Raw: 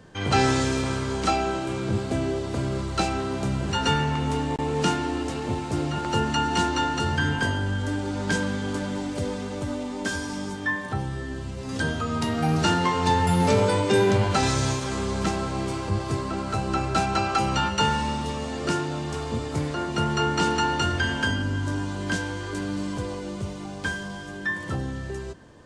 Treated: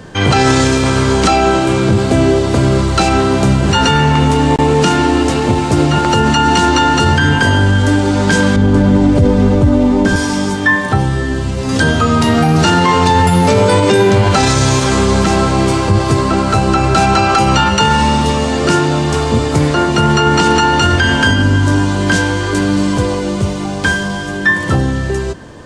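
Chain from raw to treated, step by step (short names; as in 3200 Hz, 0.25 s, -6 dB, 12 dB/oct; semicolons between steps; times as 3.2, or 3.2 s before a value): 8.56–10.16 tilt -3 dB/oct; maximiser +17 dB; gain -1 dB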